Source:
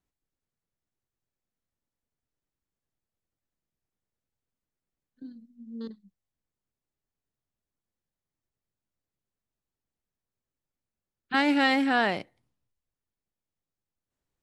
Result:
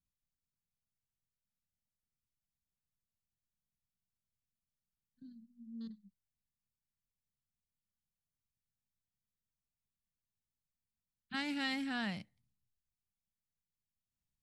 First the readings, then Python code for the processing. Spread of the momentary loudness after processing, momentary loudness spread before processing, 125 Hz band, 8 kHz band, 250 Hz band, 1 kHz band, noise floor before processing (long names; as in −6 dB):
21 LU, 19 LU, −4.5 dB, can't be measured, −12.5 dB, −18.5 dB, below −85 dBFS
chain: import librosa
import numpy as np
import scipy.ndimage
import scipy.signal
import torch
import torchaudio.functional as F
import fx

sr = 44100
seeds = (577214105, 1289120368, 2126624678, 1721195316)

y = fx.curve_eq(x, sr, hz=(210.0, 370.0, 5200.0), db=(0, -20, -3))
y = F.gain(torch.from_numpy(y), -4.0).numpy()